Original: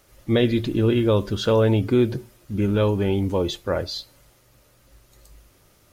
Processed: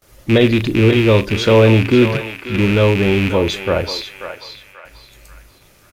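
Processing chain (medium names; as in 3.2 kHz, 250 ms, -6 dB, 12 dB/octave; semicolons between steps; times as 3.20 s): rattle on loud lows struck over -25 dBFS, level -17 dBFS; gate with hold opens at -47 dBFS; doubling 36 ms -14 dB; on a send: band-passed feedback delay 536 ms, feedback 44%, band-pass 1.8 kHz, level -6 dB; on the sum: trim +6.5 dB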